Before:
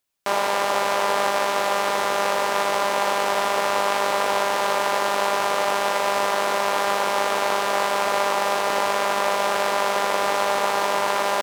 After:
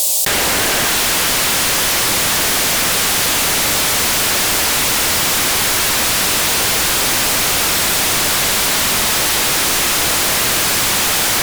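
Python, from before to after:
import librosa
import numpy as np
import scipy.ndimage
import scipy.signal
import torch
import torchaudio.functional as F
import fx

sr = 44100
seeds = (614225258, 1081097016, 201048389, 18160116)

y = fx.graphic_eq_10(x, sr, hz=(125, 250, 500, 2000, 4000, 8000, 16000), db=(-9, -4, 11, -5, 6, 9, 10))
y = 10.0 ** (-12.5 / 20.0) * np.tanh(y / 10.0 ** (-12.5 / 20.0))
y = fx.low_shelf(y, sr, hz=440.0, db=-3.0)
y = fx.fixed_phaser(y, sr, hz=390.0, stages=6)
y = fx.echo_feedback(y, sr, ms=612, feedback_pct=44, wet_db=-4.0)
y = fx.fold_sine(y, sr, drive_db=17, ceiling_db=-12.5)
y = fx.env_flatten(y, sr, amount_pct=100)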